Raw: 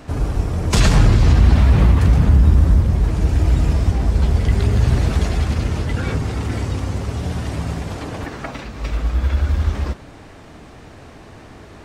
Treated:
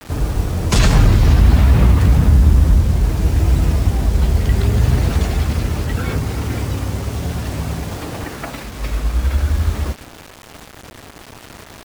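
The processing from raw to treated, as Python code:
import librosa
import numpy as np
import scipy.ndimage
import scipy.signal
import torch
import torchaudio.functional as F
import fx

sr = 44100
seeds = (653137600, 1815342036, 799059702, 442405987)

y = fx.quant_dither(x, sr, seeds[0], bits=6, dither='none')
y = fx.vibrato(y, sr, rate_hz=0.64, depth_cents=64.0)
y = y * librosa.db_to_amplitude(1.0)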